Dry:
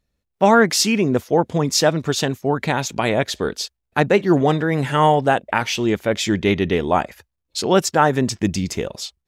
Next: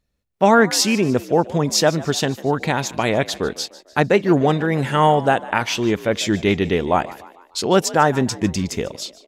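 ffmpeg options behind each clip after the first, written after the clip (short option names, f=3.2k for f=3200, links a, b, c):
-filter_complex "[0:a]asplit=5[a][b][c][d][e];[b]adelay=149,afreqshift=59,volume=-19dB[f];[c]adelay=298,afreqshift=118,volume=-25dB[g];[d]adelay=447,afreqshift=177,volume=-31dB[h];[e]adelay=596,afreqshift=236,volume=-37.1dB[i];[a][f][g][h][i]amix=inputs=5:normalize=0"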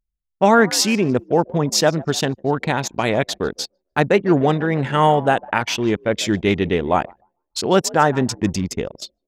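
-af "anlmdn=158"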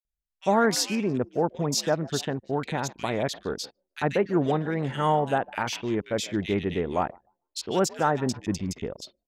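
-filter_complex "[0:a]acrossover=split=2200[a][b];[a]adelay=50[c];[c][b]amix=inputs=2:normalize=0,volume=-8dB"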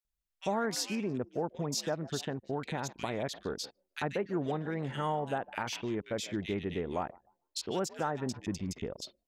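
-af "acompressor=threshold=-37dB:ratio=2"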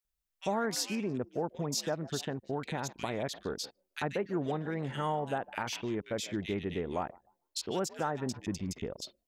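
-af "highshelf=f=10k:g=4"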